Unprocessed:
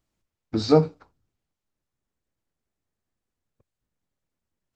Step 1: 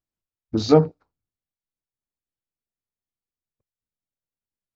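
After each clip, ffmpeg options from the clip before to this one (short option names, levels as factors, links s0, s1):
-af "afwtdn=0.0126,volume=1.33"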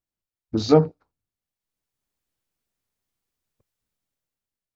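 -af "dynaudnorm=f=230:g=7:m=3.76,volume=0.891"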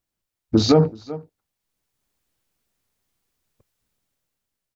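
-af "aecho=1:1:378:0.0631,alimiter=level_in=3.35:limit=0.891:release=50:level=0:latency=1,volume=0.708"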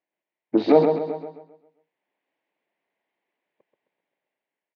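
-filter_complex "[0:a]highpass=f=230:w=0.5412,highpass=f=230:w=1.3066,equalizer=f=230:t=q:w=4:g=-7,equalizer=f=630:t=q:w=4:g=5,equalizer=f=910:t=q:w=4:g=4,equalizer=f=1300:t=q:w=4:g=-10,equalizer=f=2000:t=q:w=4:g=5,lowpass=f=2700:w=0.5412,lowpass=f=2700:w=1.3066,asplit=2[s0][s1];[s1]aecho=0:1:132|264|396|528|660:0.501|0.2|0.0802|0.0321|0.0128[s2];[s0][s2]amix=inputs=2:normalize=0"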